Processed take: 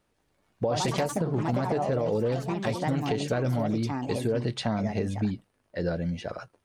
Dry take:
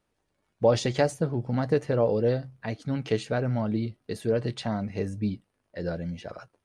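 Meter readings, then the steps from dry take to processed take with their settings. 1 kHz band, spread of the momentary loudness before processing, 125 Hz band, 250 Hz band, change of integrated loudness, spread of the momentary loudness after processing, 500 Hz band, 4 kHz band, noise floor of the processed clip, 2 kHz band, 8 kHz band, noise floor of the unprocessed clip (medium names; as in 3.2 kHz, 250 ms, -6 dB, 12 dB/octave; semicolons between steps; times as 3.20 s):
+3.5 dB, 12 LU, 0.0 dB, +1.0 dB, -0.5 dB, 6 LU, -2.5 dB, +1.5 dB, -73 dBFS, 0.0 dB, +2.5 dB, -77 dBFS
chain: ever faster or slower copies 198 ms, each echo +4 st, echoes 3, each echo -6 dB; peak limiter -17.5 dBFS, peak gain reduction 8.5 dB; compression, threshold -27 dBFS, peak gain reduction 5.5 dB; trim +4 dB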